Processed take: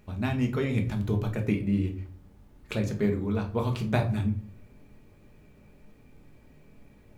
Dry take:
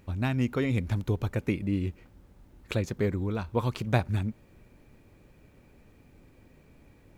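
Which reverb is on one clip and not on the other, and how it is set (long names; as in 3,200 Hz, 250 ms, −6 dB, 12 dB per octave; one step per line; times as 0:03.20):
rectangular room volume 310 cubic metres, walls furnished, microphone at 1.4 metres
level −2 dB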